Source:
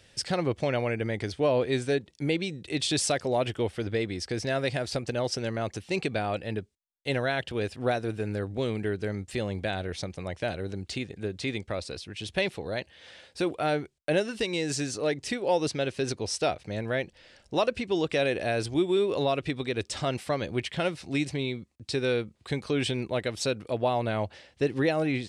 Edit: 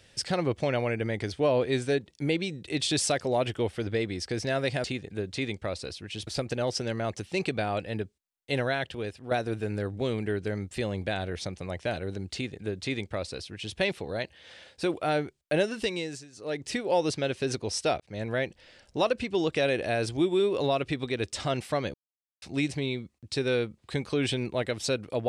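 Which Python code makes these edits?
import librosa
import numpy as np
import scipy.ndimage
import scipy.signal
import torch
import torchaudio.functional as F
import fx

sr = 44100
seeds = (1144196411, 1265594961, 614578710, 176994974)

y = fx.edit(x, sr, fx.fade_out_to(start_s=7.24, length_s=0.64, floor_db=-10.0),
    fx.duplicate(start_s=10.9, length_s=1.43, to_s=4.84),
    fx.fade_down_up(start_s=14.44, length_s=0.83, db=-20.5, fade_s=0.38),
    fx.fade_in_span(start_s=16.57, length_s=0.31, curve='qsin'),
    fx.silence(start_s=20.51, length_s=0.48), tone=tone)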